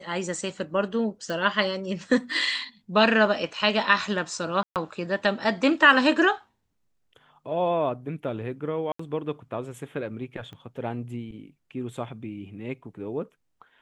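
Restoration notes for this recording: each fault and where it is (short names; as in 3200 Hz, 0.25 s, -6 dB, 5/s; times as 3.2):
1.3 pop
4.63–4.76 gap 0.128 s
8.92–8.99 gap 74 ms
10.53 pop -30 dBFS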